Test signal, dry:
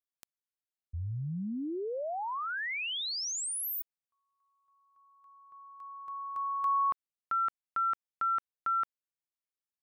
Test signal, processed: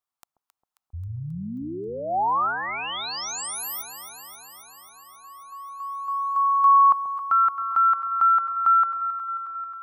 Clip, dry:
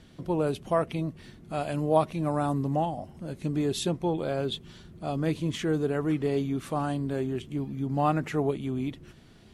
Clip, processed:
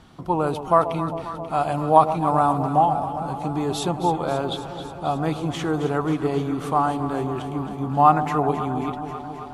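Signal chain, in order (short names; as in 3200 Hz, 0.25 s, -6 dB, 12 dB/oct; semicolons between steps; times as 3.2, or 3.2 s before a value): band shelf 990 Hz +10.5 dB 1.1 oct; echo with dull and thin repeats by turns 0.134 s, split 840 Hz, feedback 85%, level -9.5 dB; gain +2.5 dB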